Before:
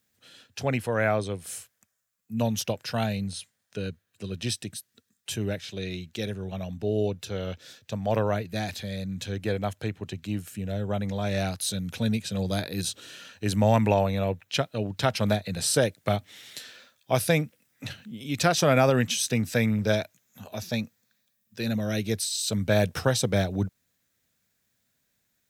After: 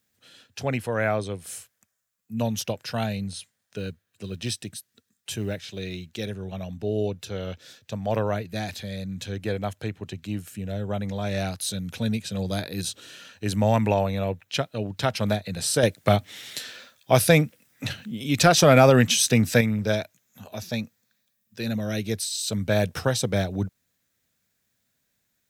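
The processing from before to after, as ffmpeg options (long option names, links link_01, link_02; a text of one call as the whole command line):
ffmpeg -i in.wav -filter_complex "[0:a]asettb=1/sr,asplit=3[link_01][link_02][link_03];[link_01]atrim=end=3.384[link_04];[link_02]atrim=start=3.38:end=6.26,asetpts=PTS-STARTPTS,afade=type=in:duration=0.004:curve=qsin,afade=type=out:start_time=2.876:duration=0.004:curve=qsin,acrusher=bits=9:mode=log:mix=0:aa=0.000001[link_05];[link_03]atrim=start=6.256[link_06];[link_04][link_05]acrossfade=duration=0.004:curve1=hsin:curve2=qsin[link_07];[link_07][link_06]acrossfade=duration=0.004:curve1=qsin:curve2=hsin,asettb=1/sr,asplit=3[link_08][link_09][link_10];[link_08]atrim=end=15.834[link_11];[link_09]atrim=start=15.83:end=19.61,asetpts=PTS-STARTPTS,afade=type=in:duration=0.004:curve=qsin,afade=type=out:start_time=3.776:duration=0.004:curve=qsin,acontrast=61[link_12];[link_10]atrim=start=19.606[link_13];[link_11][link_12]acrossfade=duration=0.004:curve1=hsin:curve2=qsin[link_14];[link_14][link_13]acrossfade=duration=0.004:curve1=qsin:curve2=hsin" out.wav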